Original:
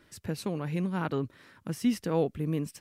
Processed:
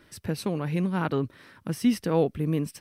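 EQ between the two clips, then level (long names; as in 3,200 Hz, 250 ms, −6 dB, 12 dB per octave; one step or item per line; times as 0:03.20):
notch filter 7,000 Hz, Q 6.5
+4.0 dB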